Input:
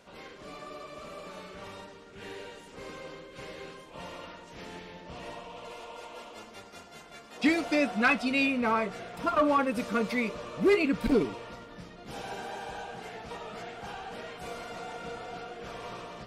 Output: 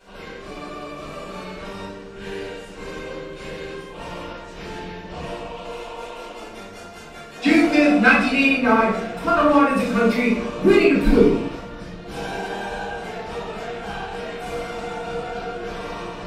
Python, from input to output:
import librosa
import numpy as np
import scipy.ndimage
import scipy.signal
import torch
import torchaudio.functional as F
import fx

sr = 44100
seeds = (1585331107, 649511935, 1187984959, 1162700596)

y = fx.room_shoebox(x, sr, seeds[0], volume_m3=91.0, walls='mixed', distance_m=3.7)
y = F.gain(torch.from_numpy(y), -4.0).numpy()